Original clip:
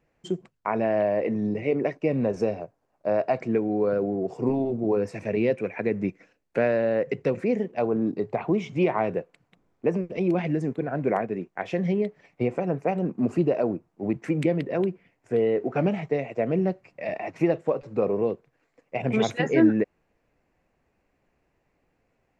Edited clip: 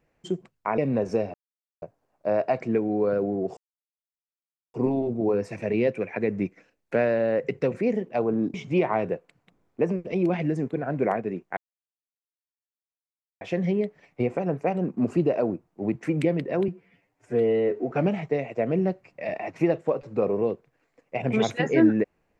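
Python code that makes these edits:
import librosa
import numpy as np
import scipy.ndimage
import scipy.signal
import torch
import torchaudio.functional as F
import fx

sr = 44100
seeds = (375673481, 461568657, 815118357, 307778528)

y = fx.edit(x, sr, fx.cut(start_s=0.78, length_s=1.28),
    fx.insert_silence(at_s=2.62, length_s=0.48),
    fx.insert_silence(at_s=4.37, length_s=1.17),
    fx.cut(start_s=8.17, length_s=0.42),
    fx.insert_silence(at_s=11.62, length_s=1.84),
    fx.stretch_span(start_s=14.89, length_s=0.82, factor=1.5), tone=tone)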